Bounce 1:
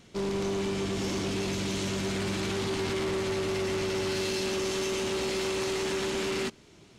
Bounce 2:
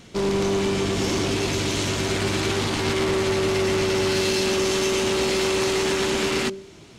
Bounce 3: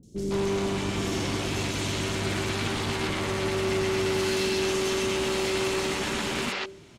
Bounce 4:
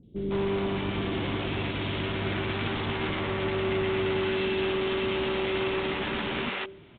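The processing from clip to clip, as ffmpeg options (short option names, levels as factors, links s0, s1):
-af "bandreject=f=193.6:t=h:w=4,bandreject=f=387.2:t=h:w=4,bandreject=f=580.8:t=h:w=4,volume=2.66"
-filter_complex "[0:a]acrossover=split=410|5400[s0][s1][s2];[s2]adelay=30[s3];[s1]adelay=160[s4];[s0][s4][s3]amix=inputs=3:normalize=0,volume=0.668"
-af "aresample=8000,aresample=44100,volume=0.891"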